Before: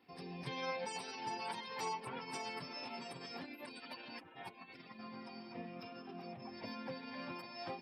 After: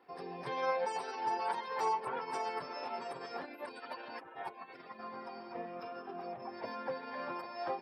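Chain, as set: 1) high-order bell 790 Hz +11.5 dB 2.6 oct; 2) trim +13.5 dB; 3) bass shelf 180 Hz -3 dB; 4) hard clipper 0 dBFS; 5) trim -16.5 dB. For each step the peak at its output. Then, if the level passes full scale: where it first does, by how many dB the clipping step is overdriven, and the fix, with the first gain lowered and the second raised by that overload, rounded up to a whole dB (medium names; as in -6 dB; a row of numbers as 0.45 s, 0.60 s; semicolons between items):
-18.5 dBFS, -5.0 dBFS, -5.5 dBFS, -5.5 dBFS, -22.0 dBFS; nothing clips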